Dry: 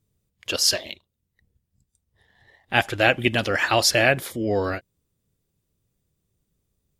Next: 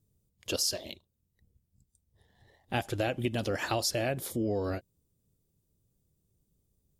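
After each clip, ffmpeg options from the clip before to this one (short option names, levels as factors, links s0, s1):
-af "equalizer=f=1900:w=0.61:g=-12,acompressor=threshold=0.0447:ratio=6"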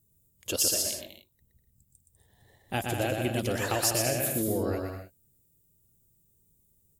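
-filter_complex "[0:a]asplit=2[s0][s1];[s1]aecho=0:1:120|198|248.7|281.7|303.1:0.631|0.398|0.251|0.158|0.1[s2];[s0][s2]amix=inputs=2:normalize=0,aexciter=amount=1.8:drive=8.7:freq=6900"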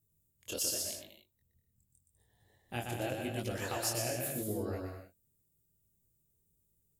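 -af "flanger=delay=18.5:depth=7.3:speed=0.87,volume=0.562"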